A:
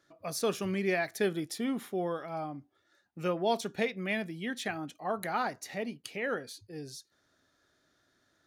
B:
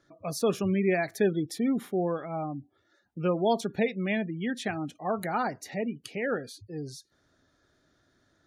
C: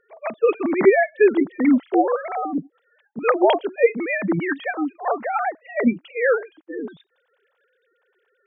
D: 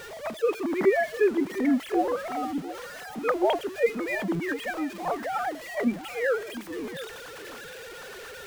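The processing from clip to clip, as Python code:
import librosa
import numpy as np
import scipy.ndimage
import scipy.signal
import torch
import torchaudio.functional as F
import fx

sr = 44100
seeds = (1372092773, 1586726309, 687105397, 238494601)

y1 = fx.high_shelf(x, sr, hz=4300.0, db=5.0)
y1 = fx.spec_gate(y1, sr, threshold_db=-25, keep='strong')
y1 = fx.tilt_eq(y1, sr, slope=-2.0)
y1 = F.gain(torch.from_numpy(y1), 2.0).numpy()
y2 = fx.sine_speech(y1, sr)
y2 = F.gain(torch.from_numpy(y2), 9.0).numpy()
y3 = y2 + 0.5 * 10.0 ** (-28.0 / 20.0) * np.sign(y2)
y3 = y3 + 10.0 ** (-14.0 / 20.0) * np.pad(y3, (int(702 * sr / 1000.0), 0))[:len(y3)]
y3 = F.gain(torch.from_numpy(y3), -8.0).numpy()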